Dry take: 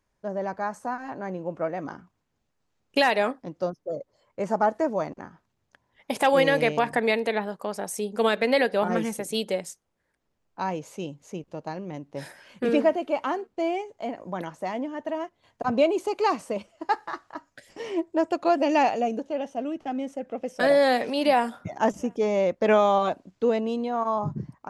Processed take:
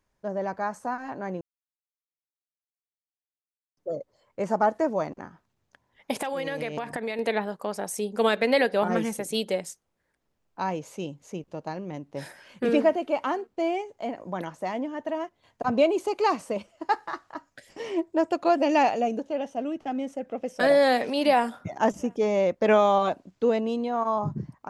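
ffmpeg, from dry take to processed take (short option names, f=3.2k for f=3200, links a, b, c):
-filter_complex "[0:a]asettb=1/sr,asplit=3[a][b][c];[a]atrim=end=6.214[d];[b]atrim=start=6.21:end=7.19,asetpts=PTS-STARTPTS,afade=t=in:d=0.004:c=qsin,afade=t=out:st=0.976:d=0.004:c=qsin,acompressor=threshold=-27dB:ratio=6:attack=3.2:release=140:knee=1:detection=peak[e];[c]atrim=start=7.186[f];[d][e]acrossfade=d=0.004:c1=hsin:c2=qsin[g];[g][f]acrossfade=d=0.004:c1=qsin:c2=hsin,asplit=3[h][i][j];[h]atrim=end=1.41,asetpts=PTS-STARTPTS,afade=t=out:st=1.406:d=0.004:c=hsin[k];[i]atrim=start=1.41:end=3.77,asetpts=PTS-STARTPTS,volume=0[l];[j]atrim=start=3.77,asetpts=PTS-STARTPTS,afade=t=in:d=0.004:c=hsin[m];[k][l][m]concat=n=3:v=0:a=1"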